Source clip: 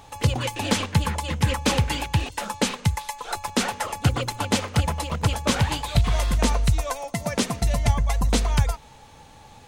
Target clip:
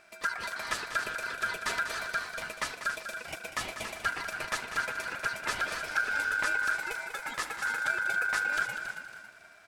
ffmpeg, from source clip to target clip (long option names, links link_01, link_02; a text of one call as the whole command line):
ffmpeg -i in.wav -filter_complex "[0:a]asplit=2[link_01][link_02];[link_02]asplit=4[link_03][link_04][link_05][link_06];[link_03]adelay=277,afreqshift=-42,volume=-9dB[link_07];[link_04]adelay=554,afreqshift=-84,volume=-18.1dB[link_08];[link_05]adelay=831,afreqshift=-126,volume=-27.2dB[link_09];[link_06]adelay=1108,afreqshift=-168,volume=-36.4dB[link_10];[link_07][link_08][link_09][link_10]amix=inputs=4:normalize=0[link_11];[link_01][link_11]amix=inputs=2:normalize=0,aeval=exprs='val(0)*sin(2*PI*1500*n/s)':channel_layout=same,asplit=2[link_12][link_13];[link_13]aecho=0:1:194|388|582|776:0.316|0.13|0.0532|0.0218[link_14];[link_12][link_14]amix=inputs=2:normalize=0,volume=-8.5dB" out.wav